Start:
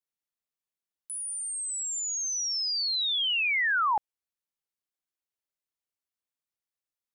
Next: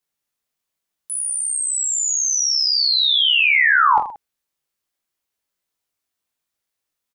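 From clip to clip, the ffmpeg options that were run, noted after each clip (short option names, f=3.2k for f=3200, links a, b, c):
-af "aecho=1:1:20|46|79.8|123.7|180.9:0.631|0.398|0.251|0.158|0.1,volume=9dB"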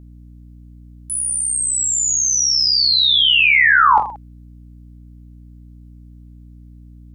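-af "aeval=exprs='val(0)+0.00794*(sin(2*PI*60*n/s)+sin(2*PI*2*60*n/s)/2+sin(2*PI*3*60*n/s)/3+sin(2*PI*4*60*n/s)/4+sin(2*PI*5*60*n/s)/5)':c=same,volume=2.5dB"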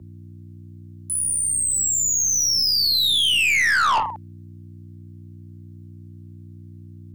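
-af "afreqshift=36,aeval=exprs='(tanh(6.31*val(0)+0.15)-tanh(0.15))/6.31':c=same"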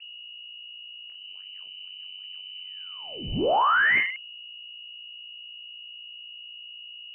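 -af "lowpass=f=2.6k:t=q:w=0.5098,lowpass=f=2.6k:t=q:w=0.6013,lowpass=f=2.6k:t=q:w=0.9,lowpass=f=2.6k:t=q:w=2.563,afreqshift=-3000,volume=-2dB"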